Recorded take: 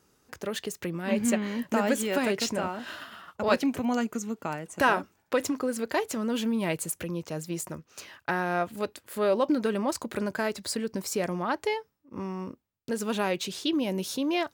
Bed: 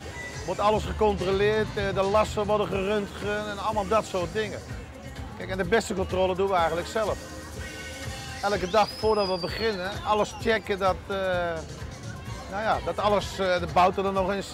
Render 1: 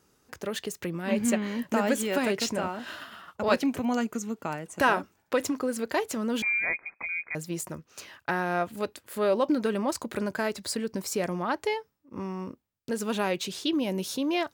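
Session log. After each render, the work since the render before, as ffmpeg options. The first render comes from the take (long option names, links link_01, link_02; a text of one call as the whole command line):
ffmpeg -i in.wav -filter_complex "[0:a]asettb=1/sr,asplit=3[link_01][link_02][link_03];[link_01]atrim=end=6.424[link_04];[link_02]atrim=start=6.42:end=7.35,asetpts=PTS-STARTPTS,afade=type=in:duration=0.004:curve=qsin,afade=type=out:start_time=0.926:duration=0.004:curve=qsin,lowpass=frequency=2200:width_type=q:width=0.5098,lowpass=frequency=2200:width_type=q:width=0.6013,lowpass=frequency=2200:width_type=q:width=0.9,lowpass=frequency=2200:width_type=q:width=2.563,afreqshift=-2600[link_05];[link_03]atrim=start=7.346[link_06];[link_04][link_05]acrossfade=duration=0.004:curve1=hsin:curve2=qsin[link_07];[link_07][link_06]acrossfade=duration=0.004:curve1=qsin:curve2=hsin" out.wav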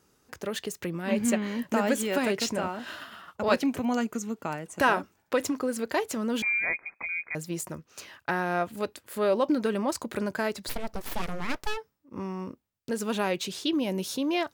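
ffmpeg -i in.wav -filter_complex "[0:a]asplit=3[link_01][link_02][link_03];[link_01]afade=type=out:start_time=10.68:duration=0.02[link_04];[link_02]aeval=exprs='abs(val(0))':channel_layout=same,afade=type=in:start_time=10.68:duration=0.02,afade=type=out:start_time=11.76:duration=0.02[link_05];[link_03]afade=type=in:start_time=11.76:duration=0.02[link_06];[link_04][link_05][link_06]amix=inputs=3:normalize=0" out.wav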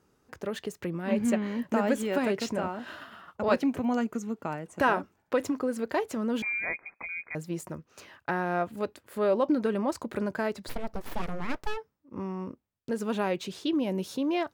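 ffmpeg -i in.wav -af "highshelf=frequency=2500:gain=-9.5" out.wav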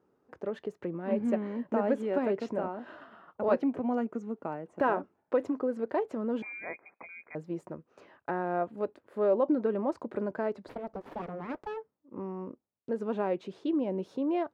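ffmpeg -i in.wav -af "bandpass=frequency=470:width_type=q:width=0.71:csg=0" out.wav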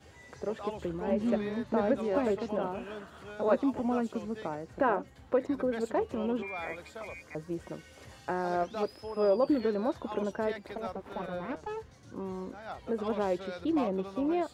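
ffmpeg -i in.wav -i bed.wav -filter_complex "[1:a]volume=-17dB[link_01];[0:a][link_01]amix=inputs=2:normalize=0" out.wav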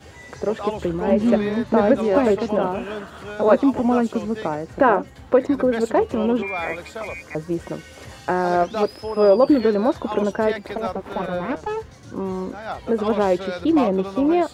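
ffmpeg -i in.wav -af "volume=11.5dB,alimiter=limit=-3dB:level=0:latency=1" out.wav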